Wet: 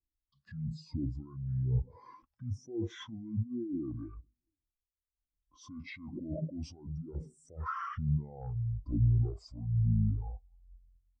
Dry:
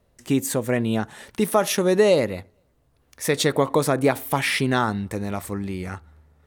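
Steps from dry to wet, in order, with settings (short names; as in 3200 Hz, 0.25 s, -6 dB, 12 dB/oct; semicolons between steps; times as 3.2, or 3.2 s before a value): negative-ratio compressor -25 dBFS, ratio -0.5; speed mistake 78 rpm record played at 45 rpm; sine folder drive 10 dB, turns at -7 dBFS; limiter -16 dBFS, peak gain reduction 9.5 dB; harmonic tremolo 1.1 Hz, depth 50%, crossover 640 Hz; spectral expander 2.5:1; gain -7.5 dB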